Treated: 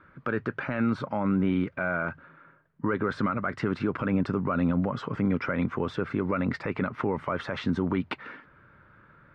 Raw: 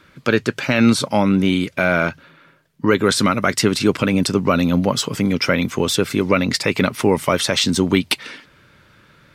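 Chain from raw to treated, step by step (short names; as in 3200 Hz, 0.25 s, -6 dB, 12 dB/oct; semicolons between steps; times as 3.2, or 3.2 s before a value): synth low-pass 1400 Hz, resonance Q 1.9; limiter -10.5 dBFS, peak gain reduction 9.5 dB; low shelf 180 Hz +3.5 dB; gain -7.5 dB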